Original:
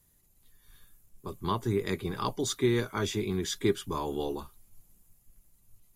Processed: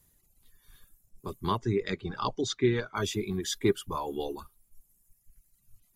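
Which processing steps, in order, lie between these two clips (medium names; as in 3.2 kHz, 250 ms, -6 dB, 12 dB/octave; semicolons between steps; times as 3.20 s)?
reverb removal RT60 1.7 s; 1.57–2.96 s: low-pass 5.9 kHz 24 dB/octave; trim +1.5 dB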